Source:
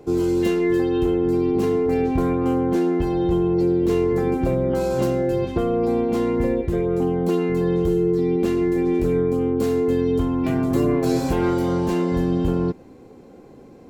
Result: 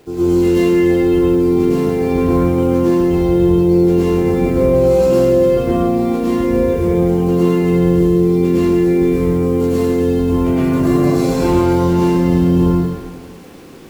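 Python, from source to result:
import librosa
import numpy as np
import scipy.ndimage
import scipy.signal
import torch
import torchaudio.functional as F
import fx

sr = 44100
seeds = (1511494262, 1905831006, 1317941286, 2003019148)

y = fx.quant_dither(x, sr, seeds[0], bits=8, dither='none')
y = fx.rev_plate(y, sr, seeds[1], rt60_s=1.4, hf_ratio=0.95, predelay_ms=90, drr_db=-9.0)
y = F.gain(torch.from_numpy(y), -3.5).numpy()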